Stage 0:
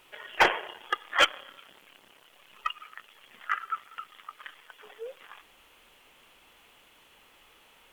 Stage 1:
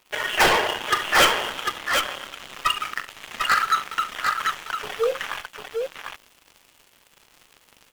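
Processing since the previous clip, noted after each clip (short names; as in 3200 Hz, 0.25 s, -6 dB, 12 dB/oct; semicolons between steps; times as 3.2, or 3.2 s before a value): sample leveller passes 5; tapped delay 41/69/748 ms -11.5/-16.5/-4.5 dB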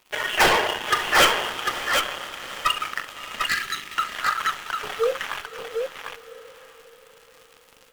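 spectral gain 3.47–3.97, 420–1600 Hz -14 dB; diffused feedback echo 0.599 s, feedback 46%, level -15 dB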